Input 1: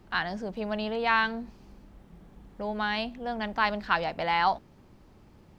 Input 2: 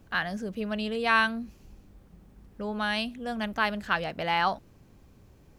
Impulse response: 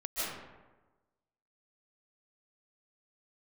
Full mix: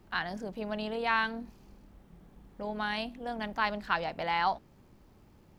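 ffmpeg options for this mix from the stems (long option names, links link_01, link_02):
-filter_complex "[0:a]volume=-4dB,asplit=2[link_01][link_02];[1:a]crystalizer=i=2:c=0,aeval=exprs='val(0)*sin(2*PI*39*n/s)':channel_layout=same,volume=-13.5dB[link_03];[link_02]apad=whole_len=246260[link_04];[link_03][link_04]sidechaincompress=threshold=-34dB:ratio=8:attack=5.6:release=223[link_05];[link_01][link_05]amix=inputs=2:normalize=0"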